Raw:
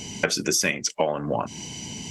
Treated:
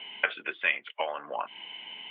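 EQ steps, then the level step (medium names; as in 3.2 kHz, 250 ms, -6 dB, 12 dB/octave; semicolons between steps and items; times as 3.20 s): high-pass 990 Hz 12 dB/octave; steep low-pass 3.4 kHz 96 dB/octave; 0.0 dB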